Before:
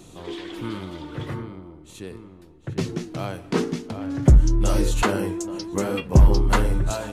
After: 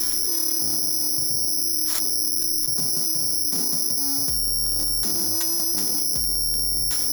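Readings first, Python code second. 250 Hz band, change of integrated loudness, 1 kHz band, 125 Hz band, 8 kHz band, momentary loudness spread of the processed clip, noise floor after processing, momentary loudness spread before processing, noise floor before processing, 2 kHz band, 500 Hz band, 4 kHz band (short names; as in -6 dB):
-10.0 dB, +3.5 dB, -12.0 dB, -18.0 dB, +17.5 dB, 0 LU, -24 dBFS, 20 LU, -47 dBFS, -11.5 dB, -13.5 dB, +14.5 dB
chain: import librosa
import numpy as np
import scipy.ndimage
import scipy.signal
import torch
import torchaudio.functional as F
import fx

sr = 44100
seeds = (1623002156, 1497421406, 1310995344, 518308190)

p1 = scipy.signal.sosfilt(scipy.signal.cheby2(4, 50, [690.0, 2400.0], 'bandstop', fs=sr, output='sos'), x)
p2 = fx.rev_fdn(p1, sr, rt60_s=0.73, lf_ratio=0.75, hf_ratio=0.8, size_ms=20.0, drr_db=10.5)
p3 = fx.rider(p2, sr, range_db=4, speed_s=0.5)
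p4 = p2 + (p3 * 10.0 ** (-0.5 / 20.0))
p5 = np.clip(10.0 ** (15.0 / 20.0) * p4, -1.0, 1.0) / 10.0 ** (15.0 / 20.0)
p6 = scipy.signal.sosfilt(scipy.signal.butter(2, 6300.0, 'lowpass', fs=sr, output='sos'), p5)
p7 = p6 + fx.echo_single(p6, sr, ms=837, db=-20.5, dry=0)
p8 = (np.kron(p7[::8], np.eye(8)[0]) * 8)[:len(p7)]
p9 = fx.peak_eq(p8, sr, hz=140.0, db=-12.5, octaves=1.9)
p10 = 10.0 ** (-10.5 / 20.0) * np.tanh(p9 / 10.0 ** (-10.5 / 20.0))
p11 = fx.low_shelf(p10, sr, hz=230.0, db=-6.5)
p12 = fx.env_flatten(p11, sr, amount_pct=100)
y = p12 * 10.0 ** (-5.5 / 20.0)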